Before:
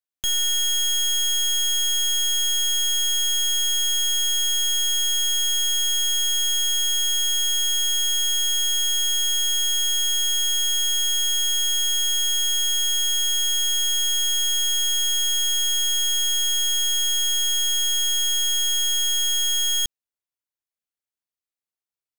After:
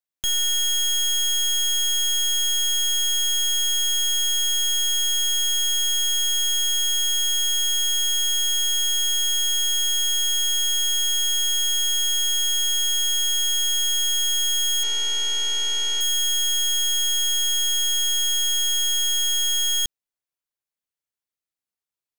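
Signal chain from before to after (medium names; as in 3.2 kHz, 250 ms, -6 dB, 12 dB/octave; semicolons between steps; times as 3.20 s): 14.83–16.01 s: class-D stage that switches slowly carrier 15 kHz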